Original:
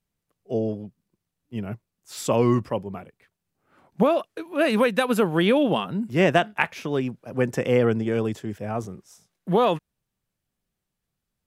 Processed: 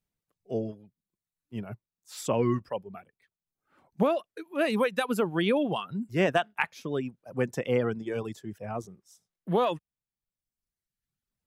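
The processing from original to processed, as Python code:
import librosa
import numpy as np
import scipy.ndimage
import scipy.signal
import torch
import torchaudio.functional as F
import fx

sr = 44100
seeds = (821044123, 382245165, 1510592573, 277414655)

y = fx.dereverb_blind(x, sr, rt60_s=1.2)
y = y * 10.0 ** (-5.0 / 20.0)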